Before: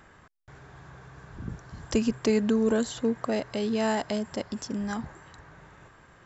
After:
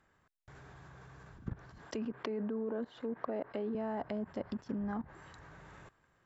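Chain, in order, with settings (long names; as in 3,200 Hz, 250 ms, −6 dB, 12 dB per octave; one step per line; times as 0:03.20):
0:01.78–0:03.75: three-way crossover with the lows and the highs turned down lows −16 dB, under 210 Hz, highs −12 dB, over 4,900 Hz
output level in coarse steps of 18 dB
treble cut that deepens with the level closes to 1,200 Hz, closed at −33.5 dBFS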